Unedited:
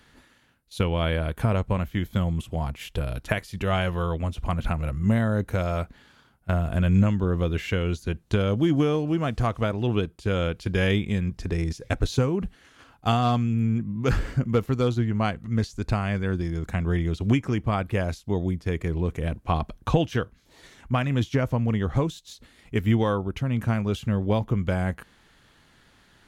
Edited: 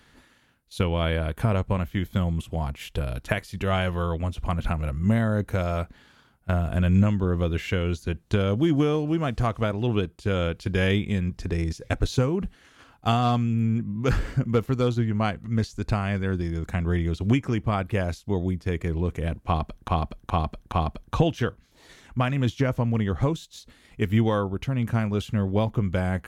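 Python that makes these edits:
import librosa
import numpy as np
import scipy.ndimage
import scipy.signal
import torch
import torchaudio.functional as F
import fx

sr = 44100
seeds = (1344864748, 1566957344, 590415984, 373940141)

y = fx.edit(x, sr, fx.repeat(start_s=19.46, length_s=0.42, count=4), tone=tone)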